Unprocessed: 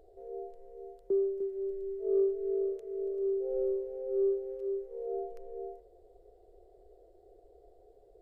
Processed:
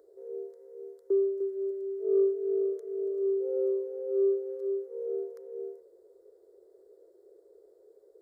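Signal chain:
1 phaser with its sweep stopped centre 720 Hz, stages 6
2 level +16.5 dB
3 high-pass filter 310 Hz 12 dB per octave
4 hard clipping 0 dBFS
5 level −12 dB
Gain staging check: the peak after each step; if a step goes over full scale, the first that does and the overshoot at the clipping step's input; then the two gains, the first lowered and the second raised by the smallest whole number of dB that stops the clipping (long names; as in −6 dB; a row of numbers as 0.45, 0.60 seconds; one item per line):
−20.5, −4.0, −5.5, −5.5, −17.5 dBFS
no step passes full scale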